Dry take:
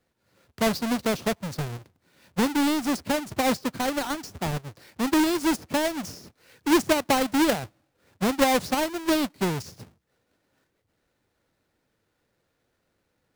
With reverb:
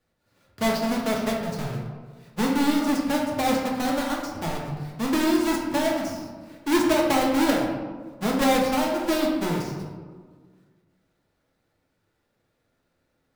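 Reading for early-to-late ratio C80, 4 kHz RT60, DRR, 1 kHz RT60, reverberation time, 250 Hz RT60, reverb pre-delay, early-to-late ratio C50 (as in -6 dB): 5.0 dB, 0.75 s, -2.5 dB, 1.5 s, 1.6 s, 2.0 s, 3 ms, 2.5 dB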